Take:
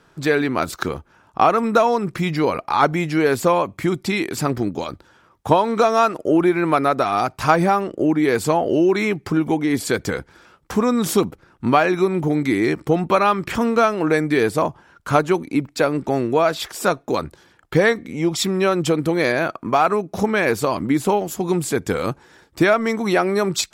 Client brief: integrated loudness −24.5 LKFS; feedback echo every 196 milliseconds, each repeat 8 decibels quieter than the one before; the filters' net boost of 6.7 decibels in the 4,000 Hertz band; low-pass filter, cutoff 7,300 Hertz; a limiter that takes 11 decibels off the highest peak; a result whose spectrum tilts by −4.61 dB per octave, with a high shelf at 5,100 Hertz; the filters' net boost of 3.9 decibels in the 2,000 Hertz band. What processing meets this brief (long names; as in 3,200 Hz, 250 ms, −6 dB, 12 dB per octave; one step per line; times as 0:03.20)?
low-pass filter 7,300 Hz
parametric band 2,000 Hz +3 dB
parametric band 4,000 Hz +5 dB
high-shelf EQ 5,100 Hz +6 dB
brickwall limiter −10.5 dBFS
repeating echo 196 ms, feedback 40%, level −8 dB
level −3.5 dB